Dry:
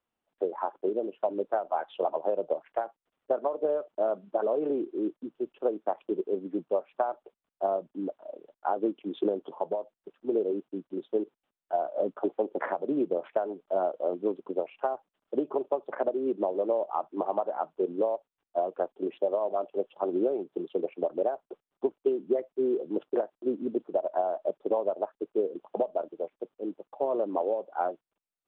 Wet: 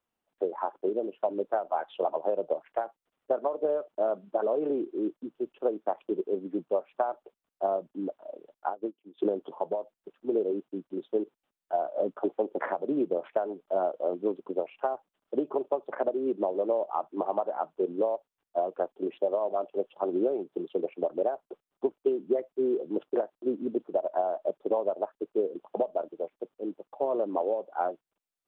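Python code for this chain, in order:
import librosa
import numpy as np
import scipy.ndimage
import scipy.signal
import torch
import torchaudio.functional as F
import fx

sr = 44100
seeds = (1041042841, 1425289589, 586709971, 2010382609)

y = fx.upward_expand(x, sr, threshold_db=-36.0, expansion=2.5, at=(8.68, 9.18), fade=0.02)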